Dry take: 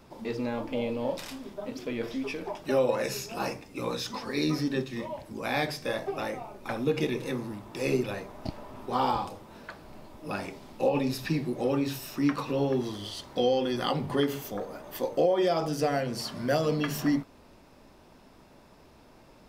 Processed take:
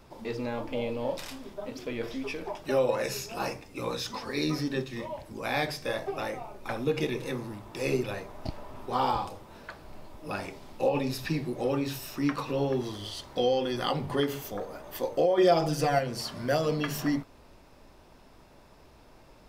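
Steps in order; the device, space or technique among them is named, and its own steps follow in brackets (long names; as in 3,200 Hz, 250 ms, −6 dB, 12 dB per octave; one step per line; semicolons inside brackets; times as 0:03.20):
0:15.37–0:15.99: comb filter 5.8 ms, depth 99%
low shelf boost with a cut just above (low-shelf EQ 66 Hz +6 dB; parametric band 220 Hz −4 dB 1.1 octaves)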